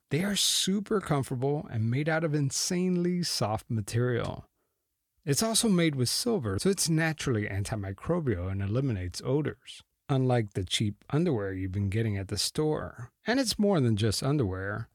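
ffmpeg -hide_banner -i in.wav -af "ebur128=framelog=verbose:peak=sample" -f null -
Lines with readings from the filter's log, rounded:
Integrated loudness:
  I:         -28.6 LUFS
  Threshold: -38.8 LUFS
Loudness range:
  LRA:         2.7 LU
  Threshold: -49.3 LUFS
  LRA low:   -30.5 LUFS
  LRA high:  -27.8 LUFS
Sample peak:
  Peak:      -12.4 dBFS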